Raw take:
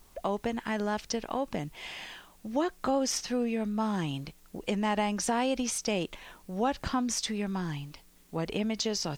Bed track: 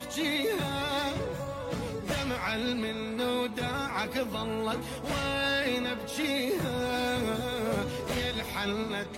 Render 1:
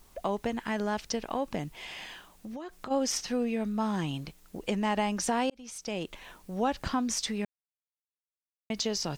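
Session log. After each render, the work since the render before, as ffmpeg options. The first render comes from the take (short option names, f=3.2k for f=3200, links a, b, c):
-filter_complex "[0:a]asplit=3[a][b][c];[a]afade=t=out:st=1.73:d=0.02[d];[b]acompressor=threshold=-37dB:ratio=6:attack=3.2:release=140:knee=1:detection=peak,afade=t=in:st=1.73:d=0.02,afade=t=out:st=2.9:d=0.02[e];[c]afade=t=in:st=2.9:d=0.02[f];[d][e][f]amix=inputs=3:normalize=0,asplit=4[g][h][i][j];[g]atrim=end=5.5,asetpts=PTS-STARTPTS,afade=t=out:st=5.496:d=0.004:c=hsin[k];[h]atrim=start=5.5:end=7.45,asetpts=PTS-STARTPTS,afade=t=in:d=0.75,afade=t=out:st=1.946:d=0.004:c=hsin[l];[i]atrim=start=7.45:end=8.7,asetpts=PTS-STARTPTS,volume=0[m];[j]atrim=start=8.7,asetpts=PTS-STARTPTS,afade=t=in:d=0.004:c=hsin[n];[k][l][m][n]concat=n=4:v=0:a=1"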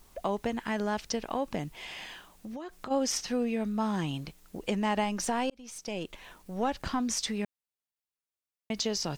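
-filter_complex "[0:a]asettb=1/sr,asplit=3[a][b][c];[a]atrim=end=5.044[d];[b]atrim=start=5.04:end=7,asetpts=PTS-STARTPTS,afade=t=in:d=0.004:c=qsin,afade=t=out:st=1.956:d=0.004:c=qsin,aeval=exprs='if(lt(val(0),0),0.708*val(0),val(0))':c=same[e];[c]atrim=start=6.996[f];[d][e]acrossfade=d=0.004:c1=hsin:c2=qsin[g];[g][f]acrossfade=d=0.004:c1=qsin:c2=hsin"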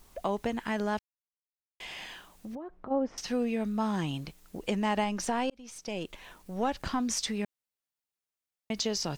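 -filter_complex "[0:a]asettb=1/sr,asplit=3[a][b][c];[a]atrim=end=2.554[d];[b]atrim=start=2.55:end=3.18,asetpts=PTS-STARTPTS,afade=t=in:d=0.004:c=qsin,afade=t=out:st=0.626:d=0.004:c=qsin,lowpass=1k[e];[c]atrim=start=3.176[f];[d][e]acrossfade=d=0.004:c1=hsin:c2=qsin[g];[g][f]acrossfade=d=0.004:c1=qsin:c2=hsin,asettb=1/sr,asplit=3[h][i][j];[h]atrim=end=5.044[k];[i]atrim=start=5.04:end=5.89,asetpts=PTS-STARTPTS,afade=t=in:d=0.004:c=qsin,afade=t=out:st=0.846:d=0.004:c=qsin,highshelf=f=7.5k:g=-5.5[l];[j]atrim=start=5.886[m];[k][l]acrossfade=d=0.004:c1=hsin:c2=qsin[n];[n][m]acrossfade=d=0.004:c1=qsin:c2=hsin,asplit=3[o][p][q];[o]atrim=end=0.99,asetpts=PTS-STARTPTS,afade=t=out:st=0.986:d=0.004:c=hsin[r];[p]atrim=start=0.99:end=1.8,asetpts=PTS-STARTPTS,volume=0[s];[q]atrim=start=1.8,asetpts=PTS-STARTPTS,afade=t=in:d=0.004:c=hsin[t];[r][s][t]concat=n=3:v=0:a=1"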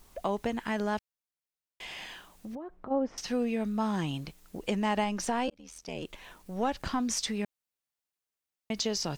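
-filter_complex "[0:a]asettb=1/sr,asplit=3[a][b][c];[a]atrim=end=5.474[d];[b]atrim=start=5.47:end=6.03,asetpts=PTS-STARTPTS,afade=t=in:d=0.004:c=qsin,afade=t=out:st=0.556:d=0.004:c=qsin,aeval=exprs='val(0)*sin(2*PI*40*n/s)':c=same[e];[c]atrim=start=6.026[f];[d][e]acrossfade=d=0.004:c1=hsin:c2=qsin[g];[g][f]acrossfade=d=0.004:c1=qsin:c2=hsin"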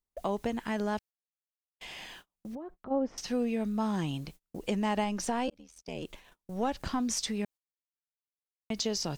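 -af "agate=range=-34dB:threshold=-47dB:ratio=16:detection=peak,equalizer=f=1.7k:w=0.54:g=-3"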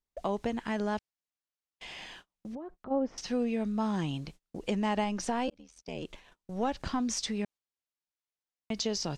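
-af "lowpass=7.5k"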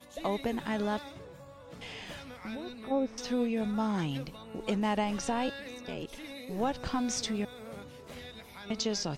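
-filter_complex "[1:a]volume=-14.5dB[a];[0:a][a]amix=inputs=2:normalize=0"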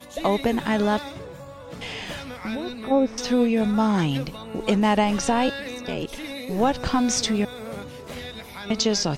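-af "volume=10dB"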